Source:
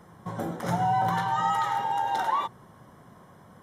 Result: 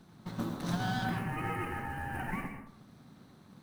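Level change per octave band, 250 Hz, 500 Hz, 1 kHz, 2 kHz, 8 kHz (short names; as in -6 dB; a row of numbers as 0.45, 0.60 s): 0.0, -7.5, -14.5, -3.0, -5.5 dB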